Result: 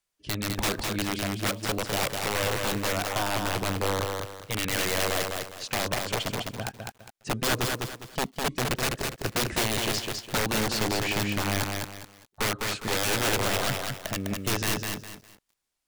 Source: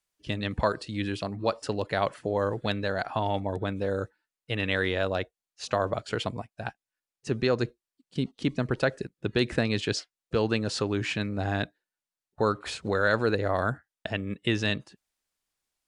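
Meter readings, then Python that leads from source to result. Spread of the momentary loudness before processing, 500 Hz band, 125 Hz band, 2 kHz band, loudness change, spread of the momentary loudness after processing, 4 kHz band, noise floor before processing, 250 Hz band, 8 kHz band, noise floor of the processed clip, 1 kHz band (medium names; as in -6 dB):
8 LU, -3.0 dB, -0.5 dB, +2.0 dB, +1.0 dB, 9 LU, +6.0 dB, under -85 dBFS, -1.5 dB, +14.5 dB, -73 dBFS, +2.0 dB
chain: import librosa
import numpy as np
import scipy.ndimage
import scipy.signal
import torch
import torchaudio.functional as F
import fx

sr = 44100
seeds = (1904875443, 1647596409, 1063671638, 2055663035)

y = (np.mod(10.0 ** (21.5 / 20.0) * x + 1.0, 2.0) - 1.0) / 10.0 ** (21.5 / 20.0)
y = fx.echo_crushed(y, sr, ms=204, feedback_pct=35, bits=9, wet_db=-3.5)
y = y * librosa.db_to_amplitude(1.0)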